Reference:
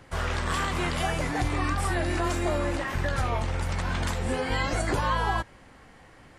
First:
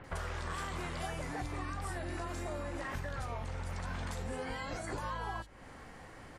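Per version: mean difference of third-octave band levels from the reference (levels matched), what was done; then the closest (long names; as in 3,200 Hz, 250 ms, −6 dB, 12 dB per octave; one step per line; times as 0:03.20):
3.5 dB: downward compressor 8 to 1, threshold −37 dBFS, peak gain reduction 14.5 dB
mains-hum notches 50/100/150/200/250/300/350 Hz
multiband delay without the direct sound lows, highs 40 ms, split 3,000 Hz
level +1.5 dB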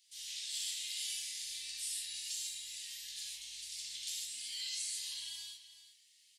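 24.0 dB: inverse Chebyshev high-pass filter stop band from 1,400 Hz, stop band 50 dB
single-tap delay 379 ms −13 dB
reverb whose tail is shaped and stops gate 180 ms flat, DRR −5.5 dB
level −5 dB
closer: first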